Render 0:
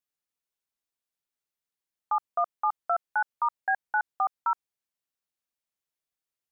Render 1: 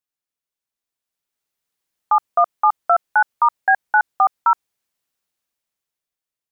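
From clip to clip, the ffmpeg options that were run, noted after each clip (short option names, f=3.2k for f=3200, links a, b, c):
-af "dynaudnorm=f=250:g=11:m=11.5dB"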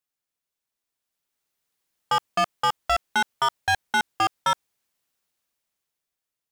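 -af "volume=20dB,asoftclip=hard,volume=-20dB,volume=1.5dB"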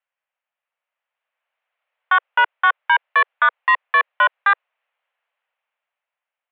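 -af "highpass=f=260:t=q:w=0.5412,highpass=f=260:t=q:w=1.307,lowpass=f=2.6k:t=q:w=0.5176,lowpass=f=2.6k:t=q:w=0.7071,lowpass=f=2.6k:t=q:w=1.932,afreqshift=260,volume=7.5dB"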